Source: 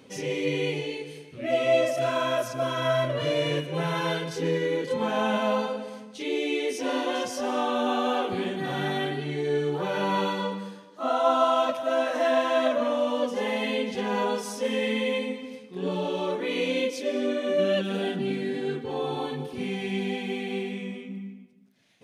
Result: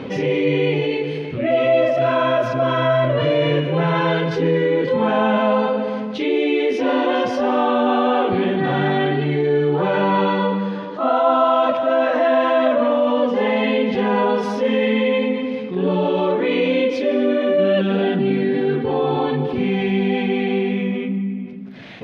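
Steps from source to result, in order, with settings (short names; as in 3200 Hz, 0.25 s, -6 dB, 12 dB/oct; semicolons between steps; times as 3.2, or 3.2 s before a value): air absorption 330 m; fast leveller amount 50%; gain +6 dB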